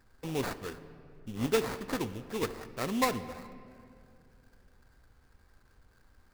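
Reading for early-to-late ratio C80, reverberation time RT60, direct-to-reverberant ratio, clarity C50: 14.5 dB, 2.5 s, 11.0 dB, 13.5 dB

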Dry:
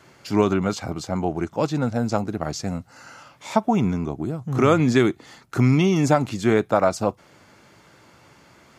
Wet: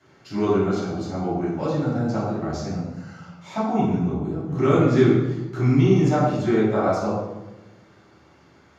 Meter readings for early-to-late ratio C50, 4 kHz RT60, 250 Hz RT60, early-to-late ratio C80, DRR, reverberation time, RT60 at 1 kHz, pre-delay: 0.5 dB, 0.75 s, 1.4 s, 3.0 dB, -9.5 dB, 1.1 s, 1.0 s, 3 ms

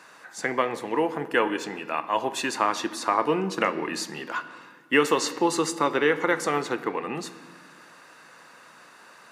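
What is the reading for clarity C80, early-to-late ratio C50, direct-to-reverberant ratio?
15.0 dB, 13.5 dB, 11.5 dB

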